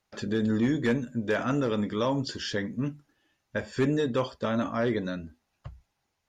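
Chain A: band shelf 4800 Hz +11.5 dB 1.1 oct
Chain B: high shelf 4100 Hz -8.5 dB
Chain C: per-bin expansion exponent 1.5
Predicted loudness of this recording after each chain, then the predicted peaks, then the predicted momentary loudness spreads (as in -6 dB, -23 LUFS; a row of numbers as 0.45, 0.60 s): -28.0, -29.0, -31.5 LUFS; -12.0, -16.5, -18.0 dBFS; 9, 11, 10 LU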